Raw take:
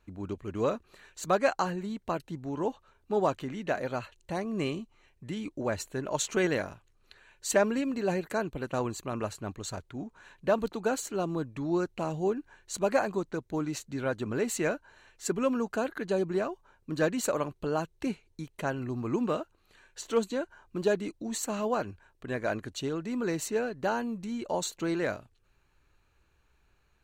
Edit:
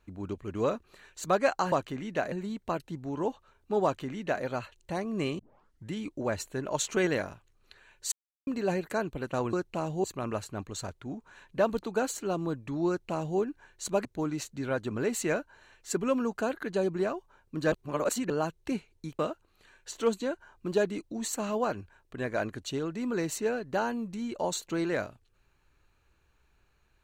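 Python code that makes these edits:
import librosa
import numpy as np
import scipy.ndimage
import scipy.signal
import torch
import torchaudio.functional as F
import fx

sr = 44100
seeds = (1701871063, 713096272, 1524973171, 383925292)

y = fx.edit(x, sr, fx.duplicate(start_s=3.24, length_s=0.6, to_s=1.72),
    fx.tape_start(start_s=4.79, length_s=0.51),
    fx.silence(start_s=7.52, length_s=0.35),
    fx.duplicate(start_s=11.77, length_s=0.51, to_s=8.93),
    fx.cut(start_s=12.94, length_s=0.46),
    fx.reverse_span(start_s=17.07, length_s=0.58),
    fx.cut(start_s=18.54, length_s=0.75), tone=tone)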